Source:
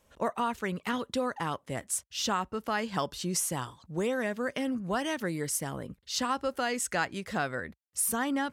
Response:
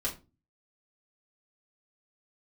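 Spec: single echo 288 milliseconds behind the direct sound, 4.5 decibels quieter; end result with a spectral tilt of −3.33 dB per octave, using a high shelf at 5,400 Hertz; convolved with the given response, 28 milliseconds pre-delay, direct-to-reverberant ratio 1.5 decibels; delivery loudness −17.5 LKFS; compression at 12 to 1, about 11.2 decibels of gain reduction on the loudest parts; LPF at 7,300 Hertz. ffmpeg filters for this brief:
-filter_complex "[0:a]lowpass=7300,highshelf=frequency=5400:gain=7.5,acompressor=threshold=-36dB:ratio=12,aecho=1:1:288:0.596,asplit=2[link_01][link_02];[1:a]atrim=start_sample=2205,adelay=28[link_03];[link_02][link_03]afir=irnorm=-1:irlink=0,volume=-6dB[link_04];[link_01][link_04]amix=inputs=2:normalize=0,volume=19dB"

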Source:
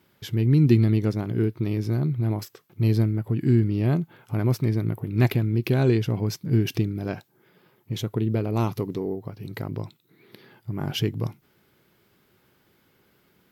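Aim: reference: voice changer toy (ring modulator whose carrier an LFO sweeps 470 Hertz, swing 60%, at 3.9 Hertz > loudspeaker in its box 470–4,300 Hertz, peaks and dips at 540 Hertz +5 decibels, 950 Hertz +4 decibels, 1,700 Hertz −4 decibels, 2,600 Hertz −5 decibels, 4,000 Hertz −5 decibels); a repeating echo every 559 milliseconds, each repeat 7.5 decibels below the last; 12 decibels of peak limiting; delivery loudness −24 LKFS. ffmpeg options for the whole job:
ffmpeg -i in.wav -af "alimiter=limit=-19dB:level=0:latency=1,aecho=1:1:559|1118|1677|2236|2795:0.422|0.177|0.0744|0.0312|0.0131,aeval=exprs='val(0)*sin(2*PI*470*n/s+470*0.6/3.9*sin(2*PI*3.9*n/s))':channel_layout=same,highpass=470,equalizer=frequency=540:width_type=q:width=4:gain=5,equalizer=frequency=950:width_type=q:width=4:gain=4,equalizer=frequency=1700:width_type=q:width=4:gain=-4,equalizer=frequency=2600:width_type=q:width=4:gain=-5,equalizer=frequency=4000:width_type=q:width=4:gain=-5,lowpass=frequency=4300:width=0.5412,lowpass=frequency=4300:width=1.3066,volume=7.5dB" out.wav

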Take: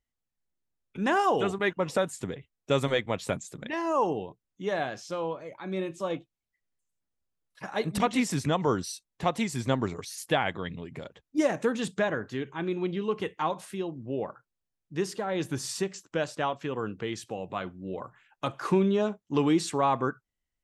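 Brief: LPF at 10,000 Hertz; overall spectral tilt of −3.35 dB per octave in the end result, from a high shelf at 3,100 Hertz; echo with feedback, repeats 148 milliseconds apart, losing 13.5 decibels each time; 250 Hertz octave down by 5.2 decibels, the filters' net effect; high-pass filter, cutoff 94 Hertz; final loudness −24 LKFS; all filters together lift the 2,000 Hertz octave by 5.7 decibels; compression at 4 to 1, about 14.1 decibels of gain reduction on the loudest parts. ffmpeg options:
ffmpeg -i in.wav -af "highpass=94,lowpass=10000,equalizer=frequency=250:width_type=o:gain=-7.5,equalizer=frequency=2000:width_type=o:gain=5.5,highshelf=frequency=3100:gain=5.5,acompressor=threshold=-37dB:ratio=4,aecho=1:1:148|296:0.211|0.0444,volume=16dB" out.wav

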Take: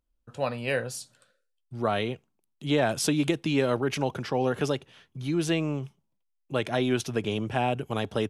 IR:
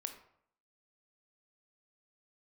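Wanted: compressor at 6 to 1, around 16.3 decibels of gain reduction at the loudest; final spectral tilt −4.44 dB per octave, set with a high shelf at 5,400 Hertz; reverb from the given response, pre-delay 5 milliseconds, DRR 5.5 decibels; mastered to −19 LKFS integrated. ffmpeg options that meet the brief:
-filter_complex "[0:a]highshelf=frequency=5400:gain=4.5,acompressor=threshold=-38dB:ratio=6,asplit=2[link_01][link_02];[1:a]atrim=start_sample=2205,adelay=5[link_03];[link_02][link_03]afir=irnorm=-1:irlink=0,volume=-3.5dB[link_04];[link_01][link_04]amix=inputs=2:normalize=0,volume=22.5dB"

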